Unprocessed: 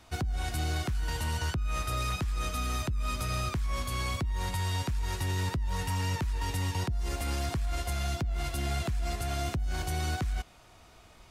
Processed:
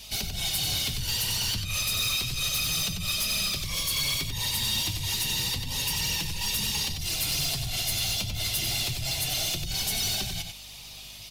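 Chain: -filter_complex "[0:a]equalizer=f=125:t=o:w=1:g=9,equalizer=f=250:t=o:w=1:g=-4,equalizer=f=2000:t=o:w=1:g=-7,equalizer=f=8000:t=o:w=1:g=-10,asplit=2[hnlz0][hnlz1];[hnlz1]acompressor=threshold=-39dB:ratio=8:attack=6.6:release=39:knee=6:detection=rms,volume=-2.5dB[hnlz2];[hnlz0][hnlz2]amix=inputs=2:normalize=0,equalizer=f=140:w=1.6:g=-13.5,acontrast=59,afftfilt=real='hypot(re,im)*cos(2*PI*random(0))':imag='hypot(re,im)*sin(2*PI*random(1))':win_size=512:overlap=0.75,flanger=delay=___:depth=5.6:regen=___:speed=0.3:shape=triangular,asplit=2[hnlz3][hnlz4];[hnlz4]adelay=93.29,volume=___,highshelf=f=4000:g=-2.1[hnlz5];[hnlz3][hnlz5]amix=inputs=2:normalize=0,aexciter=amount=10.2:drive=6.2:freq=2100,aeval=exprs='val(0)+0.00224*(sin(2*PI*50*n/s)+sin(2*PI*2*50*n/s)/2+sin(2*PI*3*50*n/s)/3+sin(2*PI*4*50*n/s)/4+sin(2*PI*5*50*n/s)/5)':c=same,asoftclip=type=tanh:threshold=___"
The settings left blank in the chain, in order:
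4.4, 52, -7dB, -22.5dB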